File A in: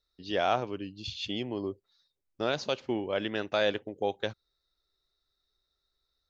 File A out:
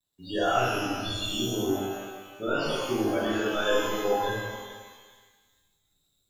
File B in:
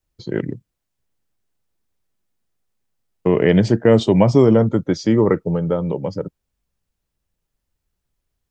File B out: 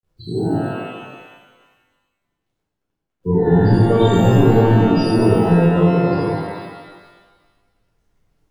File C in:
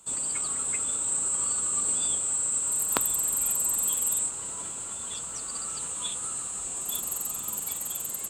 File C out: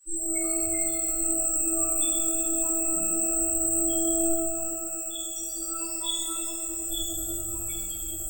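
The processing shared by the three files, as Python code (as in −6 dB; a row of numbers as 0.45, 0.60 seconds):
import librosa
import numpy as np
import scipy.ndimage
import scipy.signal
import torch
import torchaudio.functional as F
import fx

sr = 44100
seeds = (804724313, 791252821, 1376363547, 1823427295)

p1 = fx.tracing_dist(x, sr, depth_ms=0.089)
p2 = 10.0 ** (-13.5 / 20.0) * np.tanh(p1 / 10.0 ** (-13.5 / 20.0))
p3 = p1 + F.gain(torch.from_numpy(p2), -7.0).numpy()
p4 = fx.high_shelf(p3, sr, hz=9900.0, db=-6.5)
p5 = fx.hum_notches(p4, sr, base_hz=50, count=10)
p6 = p5 + fx.echo_thinned(p5, sr, ms=424, feedback_pct=23, hz=950.0, wet_db=-14, dry=0)
p7 = np.clip(p6, -10.0 ** (-14.0 / 20.0), 10.0 ** (-14.0 / 20.0))
p8 = fx.peak_eq(p7, sr, hz=650.0, db=-8.0, octaves=1.2)
p9 = fx.spec_topn(p8, sr, count=16)
p10 = fx.quant_dither(p9, sr, seeds[0], bits=12, dither='none')
p11 = fx.rev_shimmer(p10, sr, seeds[1], rt60_s=1.3, semitones=12, shimmer_db=-8, drr_db=-10.0)
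y = F.gain(torch.from_numpy(p11), -4.0).numpy()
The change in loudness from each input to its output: +4.0, +1.5, +1.5 LU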